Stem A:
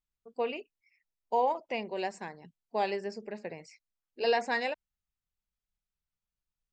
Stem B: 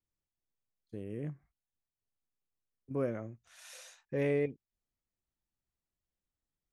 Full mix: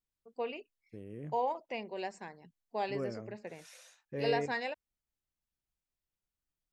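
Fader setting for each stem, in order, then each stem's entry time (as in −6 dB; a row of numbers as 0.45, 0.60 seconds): −5.0, −5.0 decibels; 0.00, 0.00 seconds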